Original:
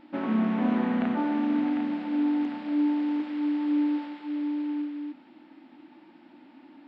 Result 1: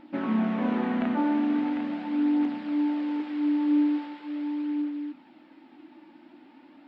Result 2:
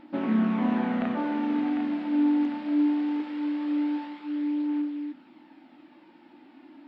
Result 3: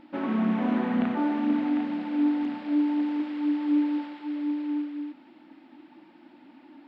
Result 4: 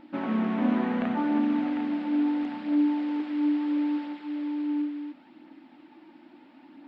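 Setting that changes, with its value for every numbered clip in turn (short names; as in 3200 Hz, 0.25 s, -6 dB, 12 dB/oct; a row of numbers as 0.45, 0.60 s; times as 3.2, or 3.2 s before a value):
phaser, rate: 0.41, 0.21, 2, 0.73 Hz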